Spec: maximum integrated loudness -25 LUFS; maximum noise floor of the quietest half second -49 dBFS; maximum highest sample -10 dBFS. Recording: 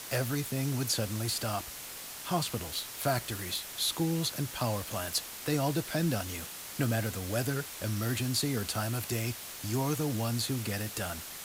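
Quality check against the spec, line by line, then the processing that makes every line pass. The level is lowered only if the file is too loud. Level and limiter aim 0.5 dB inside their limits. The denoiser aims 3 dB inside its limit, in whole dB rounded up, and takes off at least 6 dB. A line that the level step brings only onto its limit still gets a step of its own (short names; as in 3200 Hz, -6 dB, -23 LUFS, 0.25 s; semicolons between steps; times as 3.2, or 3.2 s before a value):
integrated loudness -32.5 LUFS: OK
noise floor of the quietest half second -43 dBFS: fail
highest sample -17.0 dBFS: OK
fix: denoiser 9 dB, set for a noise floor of -43 dBFS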